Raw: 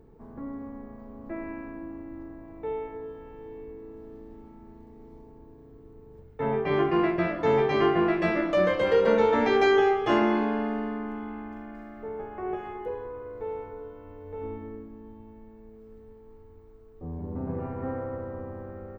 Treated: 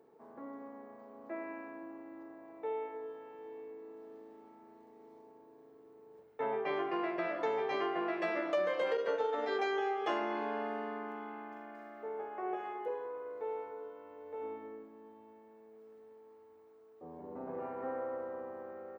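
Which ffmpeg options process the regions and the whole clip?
-filter_complex "[0:a]asettb=1/sr,asplit=3[s0][s1][s2];[s0]atrim=end=8.974[s3];[s1]atrim=start=8.97:end=9.59,asetpts=PTS-STARTPTS,afade=t=in:d=0.004:c=qsin,afade=t=out:st=0.616:d=0.004:c=qsin,agate=range=0.0224:threshold=0.126:ratio=3:release=100:detection=peak,aecho=1:1:7:0.99,atrim=end_sample=27342[s4];[s2]atrim=start=9.586[s5];[s3][s4]acrossfade=d=0.004:c1=hsin:c2=qsin[s6];[s6][s5]acrossfade=d=0.004:c1=qsin:c2=hsin,acompressor=threshold=0.0501:ratio=6,highpass=410,equalizer=f=670:w=1.5:g=2.5,volume=0.668"

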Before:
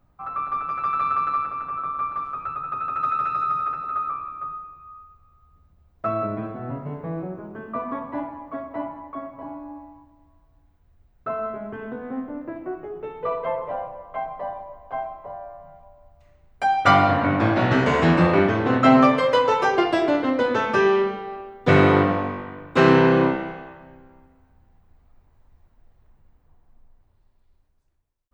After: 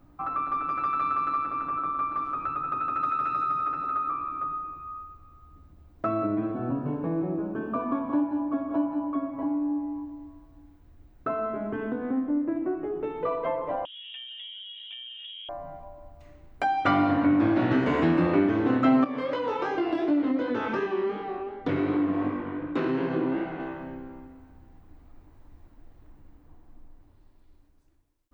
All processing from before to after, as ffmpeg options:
-filter_complex "[0:a]asettb=1/sr,asplit=3[s0][s1][s2];[s0]atrim=end=6.524[s3];[s1]atrim=start=6.52:end=9.3,asetpts=PTS-STARTPTS,afade=t=in:d=0.004:c=qsin,afade=t=out:st=2.776:d=0.004:c=qsin,asuperstop=centerf=2000:order=20:qfactor=6.8,aecho=1:1:177:0.376,atrim=end_sample=122598[s4];[s2]atrim=start=9.296[s5];[s3][s4]acrossfade=d=0.004:c1=hsin:c2=qsin[s6];[s6][s5]acrossfade=d=0.004:c1=qsin:c2=hsin,asettb=1/sr,asplit=3[s7][s8][s9];[s7]atrim=end=13.854[s10];[s8]atrim=start=13.85:end=15.49,asetpts=PTS-STARTPTS,afade=t=in:d=0.004:c=qsin,afade=t=out:st=1.636:d=0.004:c=qsin,highpass=170,acompressor=threshold=0.00794:ratio=12:attack=3.2:release=140:knee=1:detection=peak,lowpass=f=3300:t=q:w=0.5098,lowpass=f=3300:t=q:w=0.6013,lowpass=f=3300:t=q:w=0.9,lowpass=f=3300:t=q:w=2.563,afreqshift=-3900[s11];[s9]atrim=start=15.486[s12];[s10][s11]acrossfade=d=0.004:c1=hsin:c2=qsin[s13];[s13][s12]acrossfade=d=0.004:c1=qsin:c2=hsin,asettb=1/sr,asplit=3[s14][s15][s16];[s14]atrim=end=19.044[s17];[s15]atrim=start=19.04:end=23.6,asetpts=PTS-STARTPTS,afade=t=in:d=0.004:c=qsin,afade=t=out:st=4.556:d=0.004:c=qsin,lowpass=5400,acompressor=threshold=0.1:ratio=6:attack=3.2:release=140:knee=1:detection=peak,flanger=delay=16.5:depth=6.8:speed=2.7[s18];[s16]atrim=start=23.596[s19];[s17][s18]acrossfade=d=0.004:c1=hsin:c2=qsin[s20];[s20][s19]acrossfade=d=0.004:c1=qsin:c2=hsin,acrossover=split=4600[s21][s22];[s22]acompressor=threshold=0.00158:ratio=4:attack=1:release=60[s23];[s21][s23]amix=inputs=2:normalize=0,equalizer=f=300:t=o:w=0.36:g=14.5,acompressor=threshold=0.0158:ratio=2,volume=1.68"

